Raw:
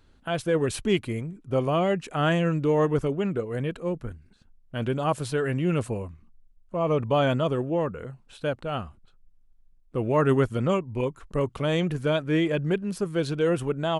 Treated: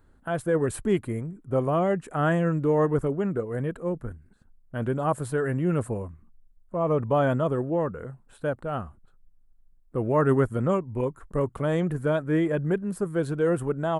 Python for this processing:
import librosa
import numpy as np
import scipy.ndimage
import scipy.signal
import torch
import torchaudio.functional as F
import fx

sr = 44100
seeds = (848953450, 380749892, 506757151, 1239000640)

y = fx.band_shelf(x, sr, hz=3800.0, db=-12.0, octaves=1.7)